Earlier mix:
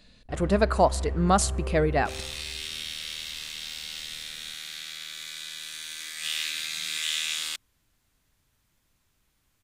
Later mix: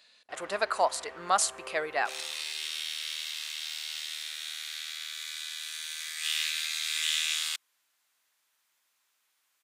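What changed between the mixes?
first sound +4.0 dB; master: add HPF 860 Hz 12 dB/oct

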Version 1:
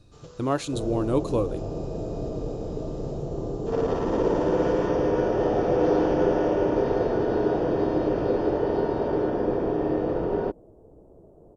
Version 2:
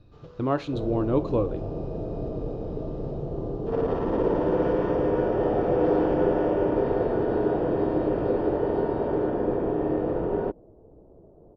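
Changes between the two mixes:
speech: send +8.5 dB; master: add air absorption 270 m

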